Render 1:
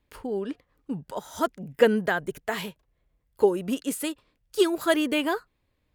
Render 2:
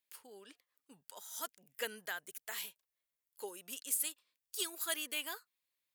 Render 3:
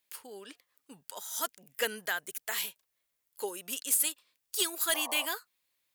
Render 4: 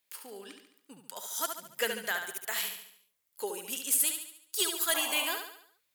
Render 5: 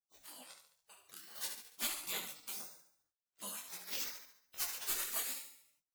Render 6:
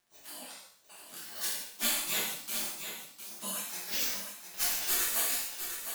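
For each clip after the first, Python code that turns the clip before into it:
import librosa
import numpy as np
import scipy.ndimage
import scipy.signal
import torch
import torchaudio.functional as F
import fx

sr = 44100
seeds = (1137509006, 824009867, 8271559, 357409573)

y1 = np.diff(x, prepend=0.0)
y1 = F.gain(torch.from_numpy(y1), -1.0).numpy()
y2 = np.clip(y1, -10.0 ** (-28.0 / 20.0), 10.0 ** (-28.0 / 20.0))
y2 = fx.spec_paint(y2, sr, seeds[0], shape='noise', start_s=4.94, length_s=0.32, low_hz=540.0, high_hz=1200.0, level_db=-50.0)
y2 = F.gain(torch.from_numpy(y2), 8.5).numpy()
y3 = fx.echo_feedback(y2, sr, ms=71, feedback_pct=48, wet_db=-6.5)
y4 = fx.doubler(y3, sr, ms=44.0, db=-13.5)
y4 = fx.spec_gate(y4, sr, threshold_db=-20, keep='weak')
y4 = fx.detune_double(y4, sr, cents=17)
y4 = F.gain(torch.from_numpy(y4), 6.0).numpy()
y5 = fx.dmg_crackle(y4, sr, seeds[1], per_s=150.0, level_db=-62.0)
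y5 = y5 + 10.0 ** (-8.5 / 20.0) * np.pad(y5, (int(707 * sr / 1000.0), 0))[:len(y5)]
y5 = fx.rev_gated(y5, sr, seeds[2], gate_ms=190, shape='falling', drr_db=-5.0)
y5 = F.gain(torch.from_numpy(y5), 2.5).numpy()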